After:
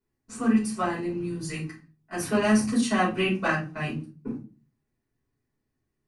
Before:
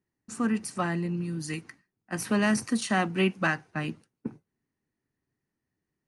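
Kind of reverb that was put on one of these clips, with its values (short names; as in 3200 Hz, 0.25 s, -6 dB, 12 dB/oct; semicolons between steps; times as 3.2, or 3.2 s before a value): shoebox room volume 140 m³, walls furnished, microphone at 4.9 m; gain -8 dB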